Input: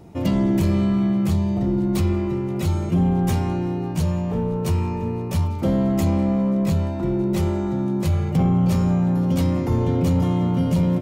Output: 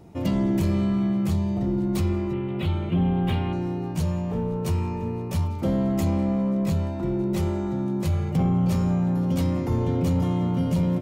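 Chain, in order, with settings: 2.33–3.53 resonant high shelf 4400 Hz -11.5 dB, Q 3; gain -3.5 dB

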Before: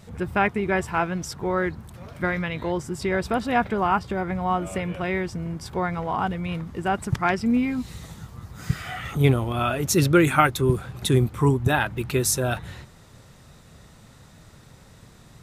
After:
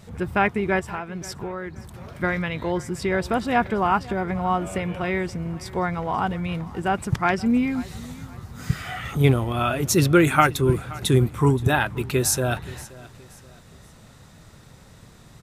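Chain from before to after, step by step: 0.79–1.76 compressor 5:1, threshold -30 dBFS, peak gain reduction 11 dB; on a send: feedback echo 0.525 s, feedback 36%, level -20 dB; on the sum: gain +1 dB

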